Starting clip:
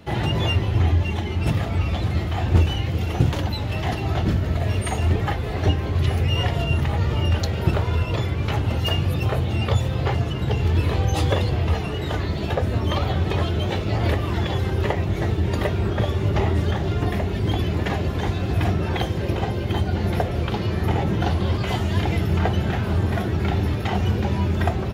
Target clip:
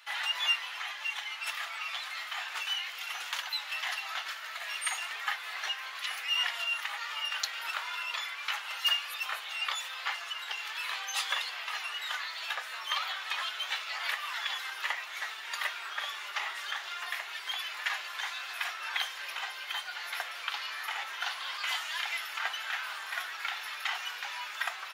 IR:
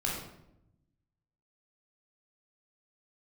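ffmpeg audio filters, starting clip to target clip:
-af "highpass=frequency=1200:width=0.5412,highpass=frequency=1200:width=1.3066"

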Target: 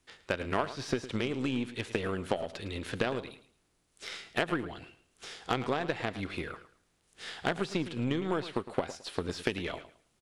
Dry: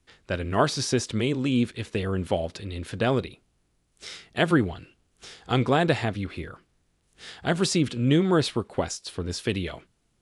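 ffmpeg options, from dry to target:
ffmpeg -i in.wav -filter_complex "[0:a]acrossover=split=3300[link_01][link_02];[link_02]acompressor=threshold=-47dB:ratio=4:attack=1:release=60[link_03];[link_01][link_03]amix=inputs=2:normalize=0,lowshelf=frequency=210:gain=-10,acompressor=threshold=-32dB:ratio=8,aeval=exprs='0.141*(cos(1*acos(clip(val(0)/0.141,-1,1)))-cos(1*PI/2))+0.00891*(cos(7*acos(clip(val(0)/0.141,-1,1)))-cos(7*PI/2))+0.00355*(cos(8*acos(clip(val(0)/0.141,-1,1)))-cos(8*PI/2))':channel_layout=same,asplit=2[link_04][link_05];[link_05]aecho=0:1:109|218|327:0.2|0.0459|0.0106[link_06];[link_04][link_06]amix=inputs=2:normalize=0,volume=6.5dB" out.wav

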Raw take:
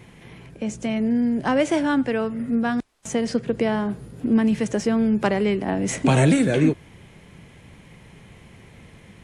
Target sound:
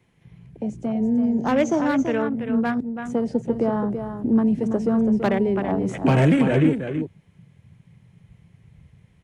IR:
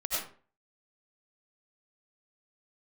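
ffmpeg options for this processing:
-filter_complex "[0:a]afwtdn=0.0316,asettb=1/sr,asplit=3[link_01][link_02][link_03];[link_01]atrim=end=1.234[link_04];[link_02]atrim=start=1.23:end=1.89,asetpts=PTS-STARTPTS,afade=type=in:duration=0.004:curve=qsin,afade=type=out:start_time=0.656:duration=0.004:curve=qsin,lowpass=frequency=6400:width_type=q:width=11[link_05];[link_03]atrim=start=1.886[link_06];[link_04][link_05]acrossfade=duration=0.004:curve1=hsin:curve2=qsin[link_07];[link_07][link_06]acrossfade=duration=0.004:curve1=qsin:curve2=hsin,aecho=1:1:332:0.398,acrossover=split=130|760|3800[link_08][link_09][link_10][link_11];[link_10]asoftclip=type=hard:threshold=-23.5dB[link_12];[link_08][link_09][link_12][link_11]amix=inputs=4:normalize=0"

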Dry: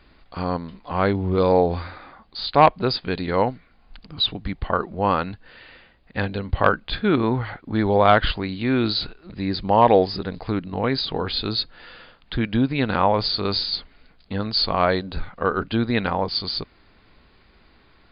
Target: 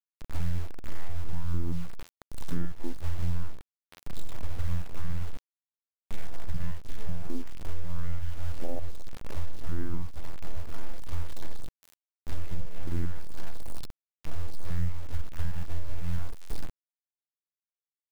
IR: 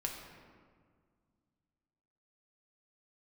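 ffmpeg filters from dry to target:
-filter_complex "[0:a]afftfilt=real='re':imag='-im':win_size=4096:overlap=0.75,asplit=2[link_01][link_02];[link_02]asoftclip=type=tanh:threshold=-17.5dB,volume=-10dB[link_03];[link_01][link_03]amix=inputs=2:normalize=0,highshelf=frequency=2700:gain=-9.5,aeval=exprs='abs(val(0))':channel_layout=same,acrossover=split=3100[link_04][link_05];[link_05]acompressor=threshold=-50dB:ratio=4:attack=1:release=60[link_06];[link_04][link_06]amix=inputs=2:normalize=0,afftfilt=real='hypot(re,im)*cos(PI*b)':imag='0':win_size=2048:overlap=0.75,lowshelf=frequency=74:gain=9,afwtdn=0.0891,acrusher=bits=5:dc=4:mix=0:aa=0.000001,acompressor=threshold=-28dB:ratio=10,volume=9.5dB"

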